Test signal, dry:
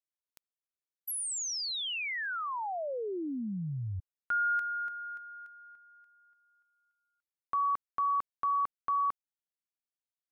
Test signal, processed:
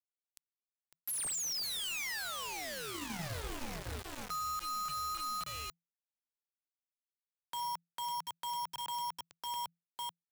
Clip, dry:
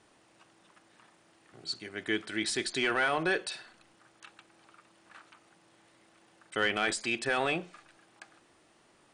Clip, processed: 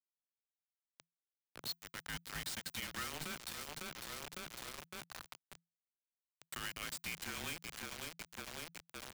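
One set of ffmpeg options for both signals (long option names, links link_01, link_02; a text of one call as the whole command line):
ffmpeg -i in.wav -filter_complex "[0:a]lowshelf=frequency=62:gain=-4,bandreject=frequency=60:width_type=h:width=6,bandreject=frequency=120:width_type=h:width=6,bandreject=frequency=180:width_type=h:width=6,bandreject=frequency=240:width_type=h:width=6,bandreject=frequency=300:width_type=h:width=6,bandreject=frequency=360:width_type=h:width=6,bandreject=frequency=420:width_type=h:width=6,bandreject=frequency=480:width_type=h:width=6,bandreject=frequency=540:width_type=h:width=6,asplit=2[link_01][link_02];[link_02]aecho=0:1:553|1106|1659|2212|2765:0.299|0.14|0.0659|0.031|0.0146[link_03];[link_01][link_03]amix=inputs=2:normalize=0,acrossover=split=380|1600[link_04][link_05][link_06];[link_05]acompressor=threshold=-47dB:ratio=6:attack=1.9:release=184:knee=2.83:detection=peak[link_07];[link_04][link_07][link_06]amix=inputs=3:normalize=0,asplit=2[link_08][link_09];[link_09]asoftclip=type=hard:threshold=-30.5dB,volume=-5.5dB[link_10];[link_08][link_10]amix=inputs=2:normalize=0,equalizer=frequency=120:width=1.2:gain=-10,aresample=32000,aresample=44100,acompressor=threshold=-38dB:ratio=12:attack=0.11:release=343:knee=1:detection=rms,acrusher=bits=6:mix=0:aa=0.000001,aeval=exprs='0.0168*(cos(1*acos(clip(val(0)/0.0168,-1,1)))-cos(1*PI/2))+0.000596*(cos(4*acos(clip(val(0)/0.0168,-1,1)))-cos(4*PI/2))':channel_layout=same,afreqshift=-170,volume=1.5dB" out.wav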